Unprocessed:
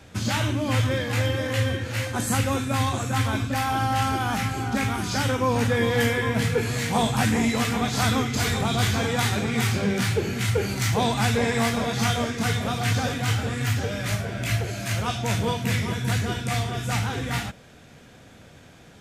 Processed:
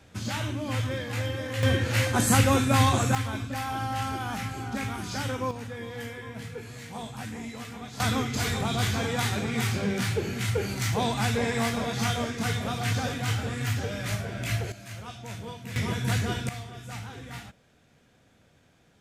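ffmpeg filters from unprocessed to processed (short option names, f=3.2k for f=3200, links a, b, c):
-af "asetnsamples=n=441:p=0,asendcmd='1.63 volume volume 3dB;3.15 volume volume -7dB;5.51 volume volume -15.5dB;8 volume volume -4dB;14.72 volume volume -14dB;15.76 volume volume -2dB;16.49 volume volume -13dB',volume=-6.5dB"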